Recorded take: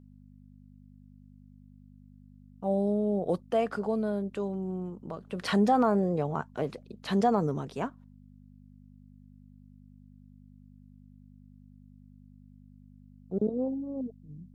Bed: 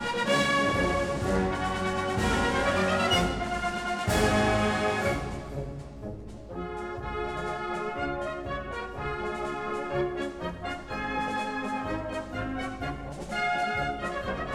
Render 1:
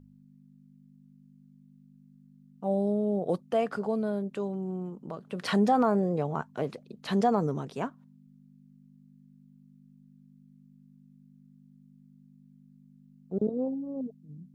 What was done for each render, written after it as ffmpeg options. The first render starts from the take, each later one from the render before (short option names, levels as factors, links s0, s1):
-af "bandreject=f=50:t=h:w=4,bandreject=f=100:t=h:w=4"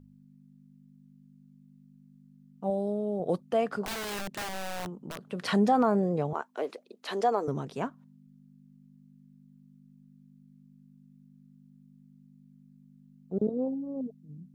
-filter_complex "[0:a]asettb=1/sr,asplit=3[s0][s1][s2];[s0]atrim=end=2.704[s3];[s1]atrim=start=2.7:end=3.2,asetpts=PTS-STARTPTS,afade=t=in:d=0.004:c=qsin,afade=t=out:st=0.496:d=0.004:c=qsin,lowshelf=f=280:g=-7.5[s4];[s2]atrim=start=3.196[s5];[s3][s4]acrossfade=d=0.004:c1=hsin:c2=qsin[s6];[s6][s5]acrossfade=d=0.004:c1=qsin:c2=hsin,asettb=1/sr,asplit=3[s7][s8][s9];[s7]atrim=end=3.854[s10];[s8]atrim=start=3.85:end=5.3,asetpts=PTS-STARTPTS,afade=t=in:d=0.004:c=qsin,afade=t=out:st=1.446:d=0.004:c=qsin,aeval=exprs='(mod(33.5*val(0)+1,2)-1)/33.5':c=same[s11];[s9]atrim=start=5.296[s12];[s10][s11]acrossfade=d=0.004:c1=hsin:c2=qsin[s13];[s13][s12]acrossfade=d=0.004:c1=qsin:c2=hsin,asettb=1/sr,asplit=3[s14][s15][s16];[s14]atrim=end=6.334[s17];[s15]atrim=start=6.33:end=7.48,asetpts=PTS-STARTPTS,afade=t=in:d=0.004:c=qsin,afade=t=out:st=1.146:d=0.004:c=qsin,highpass=f=320:w=0.5412,highpass=f=320:w=1.3066[s18];[s16]atrim=start=7.476[s19];[s17][s18]acrossfade=d=0.004:c1=hsin:c2=qsin[s20];[s20][s19]acrossfade=d=0.004:c1=qsin:c2=hsin"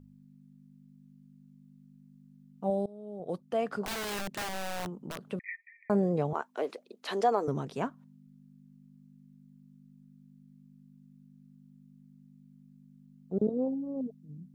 -filter_complex "[0:a]asettb=1/sr,asplit=3[s0][s1][s2];[s0]atrim=end=5.394[s3];[s1]atrim=start=5.39:end=5.9,asetpts=PTS-STARTPTS,afade=t=in:d=0.004:c=qsin,afade=t=out:st=0.506:d=0.004:c=qsin,asuperpass=centerf=2100:order=20:qfactor=3.2[s4];[s2]atrim=start=5.896[s5];[s3][s4]acrossfade=d=0.004:c1=hsin:c2=qsin[s6];[s6][s5]acrossfade=d=0.004:c1=qsin:c2=hsin,asplit=2[s7][s8];[s7]atrim=end=2.86,asetpts=PTS-STARTPTS,afade=t=out:st=2.856:d=0.004:c=hsin:silence=0.0841395[s9];[s8]atrim=start=2.86,asetpts=PTS-STARTPTS,afade=t=in:d=1.13:silence=0.0841395[s10];[s9][s10]concat=n=2:v=0:a=1"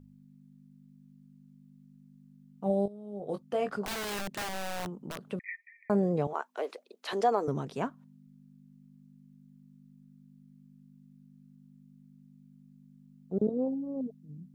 -filter_complex "[0:a]asettb=1/sr,asplit=3[s0][s1][s2];[s0]atrim=end=2.644[s3];[s1]atrim=start=2.64:end=3.7,asetpts=PTS-STARTPTS,afade=t=in:d=0.004:c=qsin,afade=t=out:st=1.056:d=0.004:c=qsin,asplit=2[s4][s5];[s5]adelay=20,volume=0.501[s6];[s4][s6]amix=inputs=2:normalize=0,atrim=end_sample=46746[s7];[s2]atrim=start=3.696[s8];[s3][s7]acrossfade=d=0.004:c1=hsin:c2=qsin[s9];[s9][s8]acrossfade=d=0.004:c1=qsin:c2=hsin,asettb=1/sr,asplit=3[s10][s11][s12];[s10]atrim=end=6.274[s13];[s11]atrim=start=6.27:end=7.13,asetpts=PTS-STARTPTS,afade=t=in:d=0.004:c=qsin,afade=t=out:st=0.856:d=0.004:c=qsin,highpass=400[s14];[s12]atrim=start=7.126[s15];[s13][s14]acrossfade=d=0.004:c1=hsin:c2=qsin[s16];[s16][s15]acrossfade=d=0.004:c1=qsin:c2=hsin"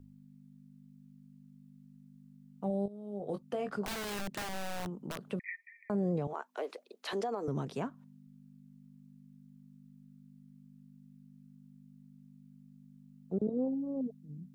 -filter_complex "[0:a]alimiter=limit=0.0794:level=0:latency=1:release=73,acrossover=split=300[s0][s1];[s1]acompressor=threshold=0.0126:ratio=2[s2];[s0][s2]amix=inputs=2:normalize=0"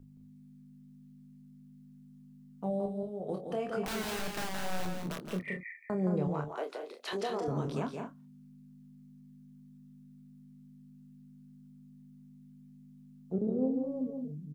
-filter_complex "[0:a]asplit=2[s0][s1];[s1]adelay=27,volume=0.447[s2];[s0][s2]amix=inputs=2:normalize=0,aecho=1:1:144|171|211:0.1|0.473|0.335"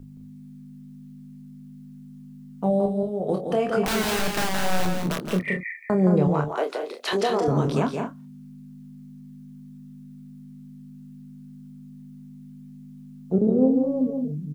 -af "volume=3.76"